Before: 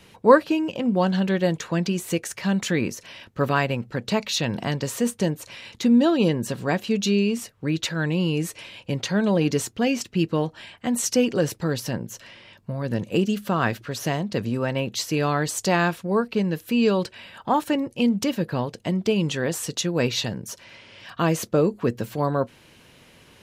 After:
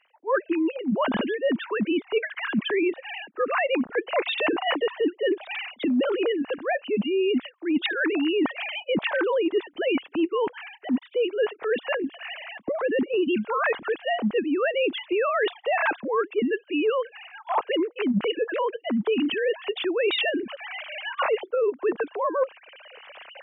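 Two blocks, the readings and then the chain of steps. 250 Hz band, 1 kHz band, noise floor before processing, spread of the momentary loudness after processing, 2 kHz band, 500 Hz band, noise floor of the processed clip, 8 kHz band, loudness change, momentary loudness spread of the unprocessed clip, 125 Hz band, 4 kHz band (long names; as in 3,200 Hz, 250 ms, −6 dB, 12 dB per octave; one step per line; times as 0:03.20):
−4.0 dB, −1.5 dB, −53 dBFS, 7 LU, +2.5 dB, +0.5 dB, −56 dBFS, below −40 dB, −2.0 dB, 10 LU, −17.0 dB, −1.0 dB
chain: three sine waves on the formant tracks
camcorder AGC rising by 7.6 dB per second
dynamic equaliser 1,000 Hz, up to +3 dB, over −29 dBFS, Q 2.7
reversed playback
downward compressor 12 to 1, threshold −21 dBFS, peak gain reduction 20 dB
reversed playback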